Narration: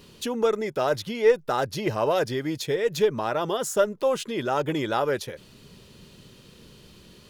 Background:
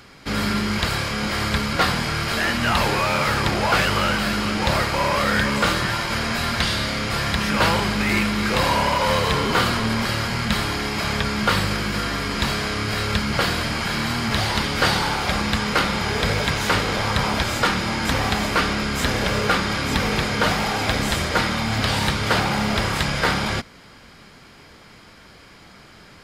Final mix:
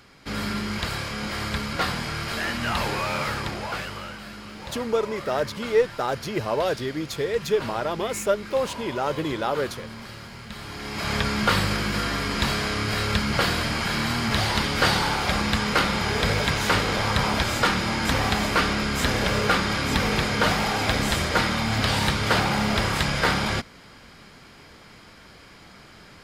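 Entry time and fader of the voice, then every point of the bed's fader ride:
4.50 s, −1.0 dB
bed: 0:03.22 −6 dB
0:04.16 −17 dB
0:10.53 −17 dB
0:11.15 −1.5 dB

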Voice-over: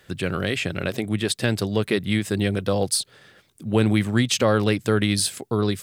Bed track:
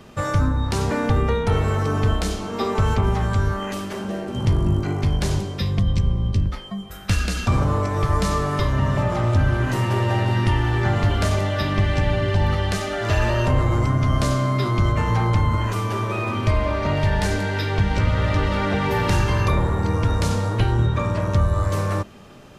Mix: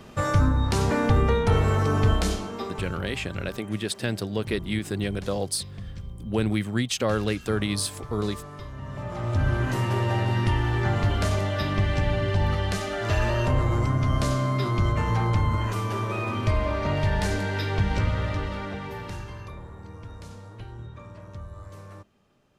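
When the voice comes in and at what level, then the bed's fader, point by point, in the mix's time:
2.60 s, −5.5 dB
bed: 0:02.33 −1 dB
0:02.96 −18 dB
0:08.78 −18 dB
0:09.48 −4 dB
0:17.98 −4 dB
0:19.54 −21 dB

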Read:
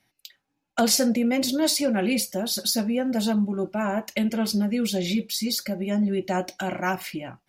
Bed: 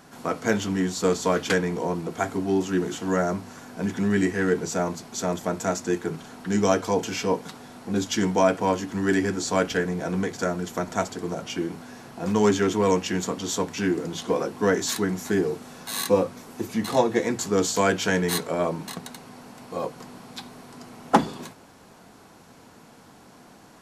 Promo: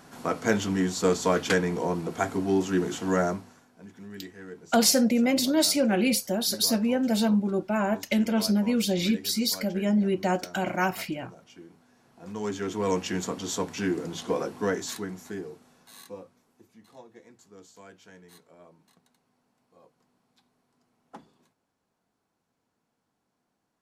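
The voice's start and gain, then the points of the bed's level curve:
3.95 s, 0.0 dB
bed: 0:03.27 −1 dB
0:03.71 −20 dB
0:11.95 −20 dB
0:13.01 −3.5 dB
0:14.48 −3.5 dB
0:16.78 −28.5 dB

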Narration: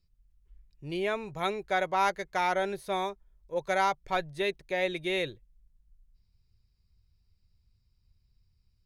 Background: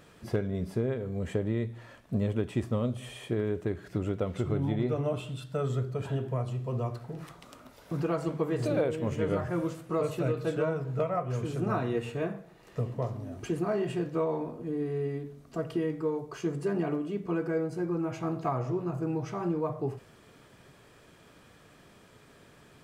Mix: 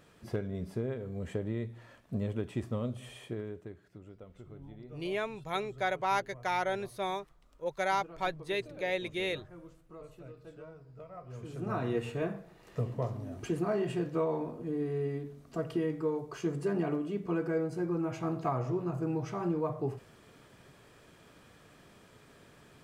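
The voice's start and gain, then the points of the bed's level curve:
4.10 s, −3.5 dB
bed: 0:03.18 −5 dB
0:04.00 −20 dB
0:11.01 −20 dB
0:11.88 −1.5 dB

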